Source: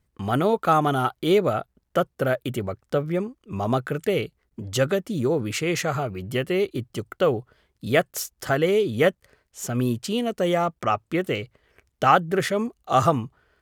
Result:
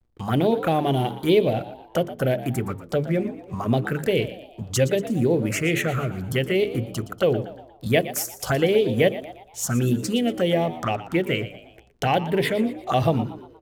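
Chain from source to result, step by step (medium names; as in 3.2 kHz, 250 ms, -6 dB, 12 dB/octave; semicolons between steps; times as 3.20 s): hum notches 50/100/150/200/250/300/350/400/450 Hz; in parallel at +2.5 dB: compression, threshold -28 dBFS, peak gain reduction 15.5 dB; on the sum: vibrato 0.82 Hz 36 cents; mains buzz 120 Hz, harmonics 35, -52 dBFS -7 dB/octave; touch-sensitive phaser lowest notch 170 Hz, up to 1.3 kHz, full sweep at -15.5 dBFS; hysteresis with a dead band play -46 dBFS; frequency-shifting echo 118 ms, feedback 45%, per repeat +74 Hz, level -14.5 dB; on a send at -22.5 dB: reverberation RT60 0.55 s, pre-delay 3 ms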